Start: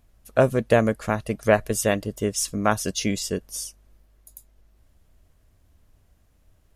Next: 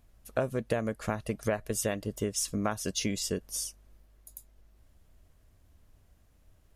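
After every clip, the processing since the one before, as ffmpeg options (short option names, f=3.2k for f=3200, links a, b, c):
-af "acompressor=threshold=-25dB:ratio=5,volume=-2dB"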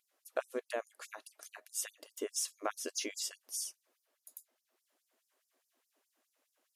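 -af "afftfilt=real='re*gte(b*sr/1024,240*pow(4900/240,0.5+0.5*sin(2*PI*4.8*pts/sr)))':imag='im*gte(b*sr/1024,240*pow(4900/240,0.5+0.5*sin(2*PI*4.8*pts/sr)))':win_size=1024:overlap=0.75,volume=-4dB"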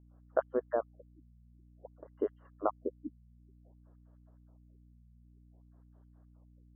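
-af "asuperstop=centerf=2500:order=4:qfactor=0.73,aeval=exprs='val(0)+0.000562*(sin(2*PI*60*n/s)+sin(2*PI*2*60*n/s)/2+sin(2*PI*3*60*n/s)/3+sin(2*PI*4*60*n/s)/4+sin(2*PI*5*60*n/s)/5)':c=same,afftfilt=real='re*lt(b*sr/1024,250*pow(3300/250,0.5+0.5*sin(2*PI*0.54*pts/sr)))':imag='im*lt(b*sr/1024,250*pow(3300/250,0.5+0.5*sin(2*PI*0.54*pts/sr)))':win_size=1024:overlap=0.75,volume=6.5dB"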